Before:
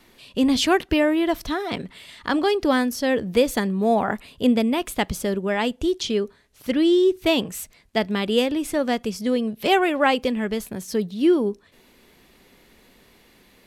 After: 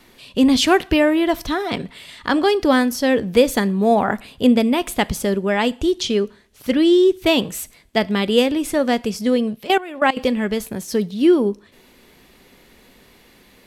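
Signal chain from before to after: two-slope reverb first 0.43 s, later 1.5 s, from -27 dB, DRR 18 dB; 9.56–10.17 level quantiser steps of 18 dB; gain +4 dB

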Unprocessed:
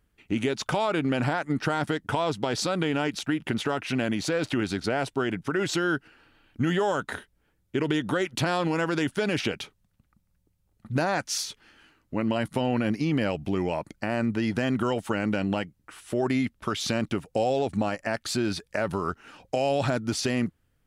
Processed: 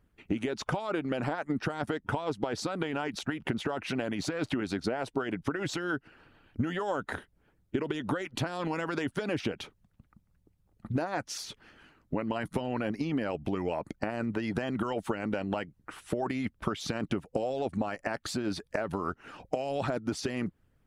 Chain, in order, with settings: harmonic-percussive split harmonic -11 dB; compressor, threshold -34 dBFS, peak gain reduction 11 dB; high shelf 2100 Hz -9.5 dB; gain +7 dB

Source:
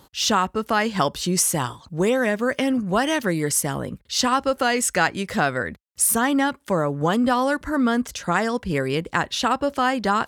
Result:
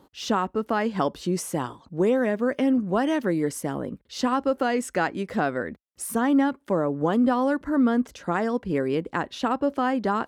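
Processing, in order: EQ curve 120 Hz 0 dB, 280 Hz +10 dB, 6900 Hz -6 dB; gain -8.5 dB

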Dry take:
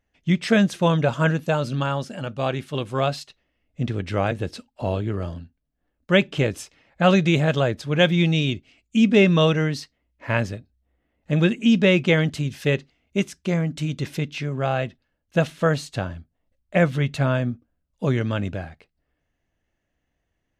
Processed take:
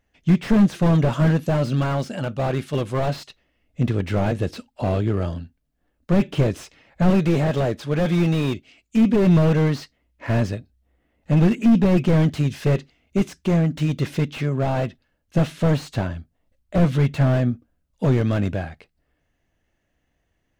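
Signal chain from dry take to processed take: 7.1–9.27 low shelf 180 Hz -7 dB; slew limiter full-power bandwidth 38 Hz; gain +4.5 dB

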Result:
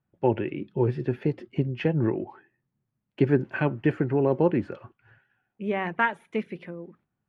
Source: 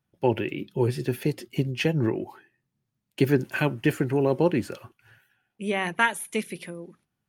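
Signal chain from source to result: LPF 1800 Hz 12 dB/oct

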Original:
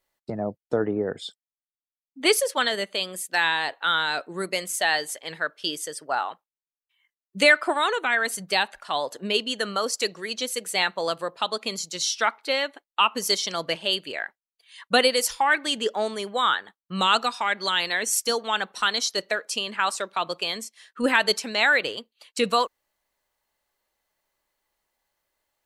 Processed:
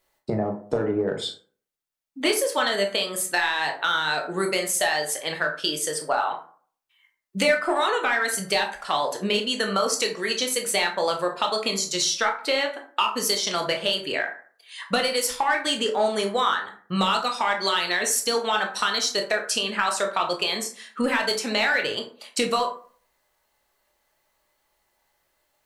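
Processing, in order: in parallel at -6.5 dB: hard clip -18.5 dBFS, distortion -10 dB; on the sum: compressor, threshold -24 dBFS, peak gain reduction 13 dB; reverb RT60 0.45 s, pre-delay 13 ms, DRR 2.5 dB; gain +2.5 dB

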